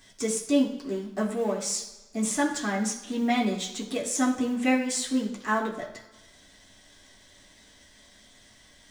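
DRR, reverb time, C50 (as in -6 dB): -4.0 dB, 1.1 s, 8.5 dB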